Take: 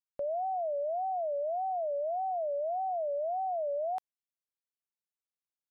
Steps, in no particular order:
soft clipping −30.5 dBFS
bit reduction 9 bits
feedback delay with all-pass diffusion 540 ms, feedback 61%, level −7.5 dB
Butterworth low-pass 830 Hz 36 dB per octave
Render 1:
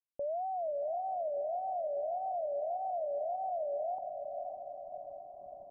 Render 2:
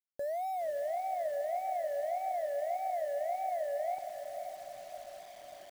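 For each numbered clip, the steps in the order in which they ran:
feedback delay with all-pass diffusion, then soft clipping, then bit reduction, then Butterworth low-pass
Butterworth low-pass, then soft clipping, then feedback delay with all-pass diffusion, then bit reduction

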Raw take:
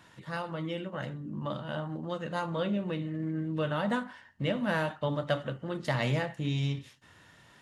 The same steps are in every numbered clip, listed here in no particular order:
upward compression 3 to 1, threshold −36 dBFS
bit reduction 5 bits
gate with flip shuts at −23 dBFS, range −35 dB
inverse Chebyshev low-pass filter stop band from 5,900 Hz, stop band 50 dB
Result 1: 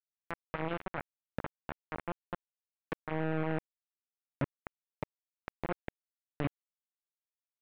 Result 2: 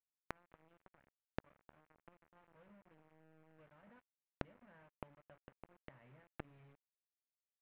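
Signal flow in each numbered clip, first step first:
gate with flip, then bit reduction, then inverse Chebyshev low-pass filter, then upward compression
bit reduction, then inverse Chebyshev low-pass filter, then upward compression, then gate with flip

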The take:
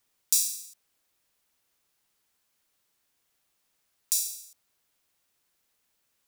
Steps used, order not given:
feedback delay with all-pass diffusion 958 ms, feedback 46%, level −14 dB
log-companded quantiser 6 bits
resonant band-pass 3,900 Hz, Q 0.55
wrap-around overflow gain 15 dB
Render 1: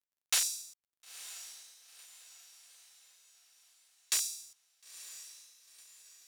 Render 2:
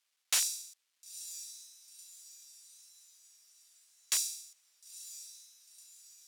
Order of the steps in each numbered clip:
wrap-around overflow, then resonant band-pass, then log-companded quantiser, then feedback delay with all-pass diffusion
feedback delay with all-pass diffusion, then log-companded quantiser, then wrap-around overflow, then resonant band-pass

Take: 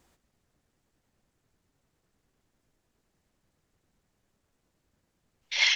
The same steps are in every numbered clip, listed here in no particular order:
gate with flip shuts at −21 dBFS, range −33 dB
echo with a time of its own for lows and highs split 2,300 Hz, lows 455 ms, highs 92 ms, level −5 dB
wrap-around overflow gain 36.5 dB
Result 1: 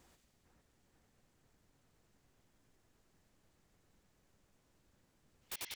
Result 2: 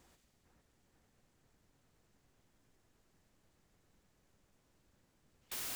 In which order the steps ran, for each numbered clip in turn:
gate with flip, then echo with a time of its own for lows and highs, then wrap-around overflow
echo with a time of its own for lows and highs, then wrap-around overflow, then gate with flip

